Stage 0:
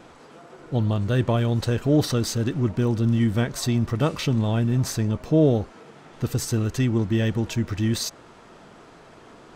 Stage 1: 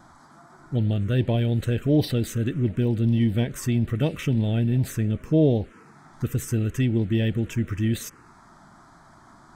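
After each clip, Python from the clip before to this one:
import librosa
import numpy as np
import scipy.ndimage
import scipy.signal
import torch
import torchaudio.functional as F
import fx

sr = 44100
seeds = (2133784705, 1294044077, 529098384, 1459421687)

y = fx.env_phaser(x, sr, low_hz=450.0, high_hz=1300.0, full_db=-16.5)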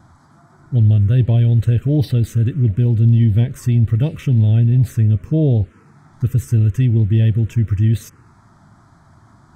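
y = fx.peak_eq(x, sr, hz=98.0, db=15.0, octaves=1.5)
y = y * librosa.db_to_amplitude(-2.0)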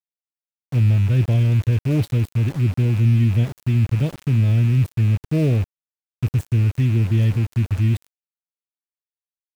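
y = fx.rattle_buzz(x, sr, strikes_db=-15.0, level_db=-25.0)
y = np.where(np.abs(y) >= 10.0 ** (-27.0 / 20.0), y, 0.0)
y = y * librosa.db_to_amplitude(-3.5)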